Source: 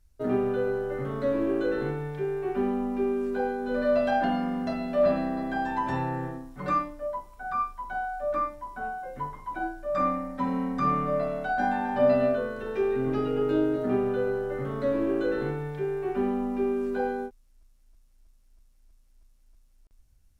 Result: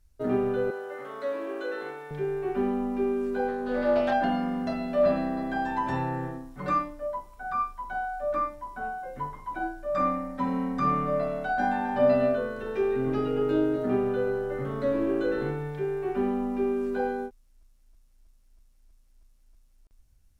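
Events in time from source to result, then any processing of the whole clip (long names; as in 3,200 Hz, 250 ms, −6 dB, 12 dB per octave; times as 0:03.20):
0:00.70–0:02.11: high-pass filter 590 Hz
0:03.48–0:04.13: highs frequency-modulated by the lows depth 0.14 ms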